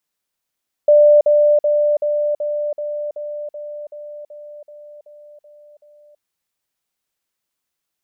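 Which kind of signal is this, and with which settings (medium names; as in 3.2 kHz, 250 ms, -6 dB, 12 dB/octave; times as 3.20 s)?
level ladder 592 Hz -6.5 dBFS, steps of -3 dB, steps 14, 0.33 s 0.05 s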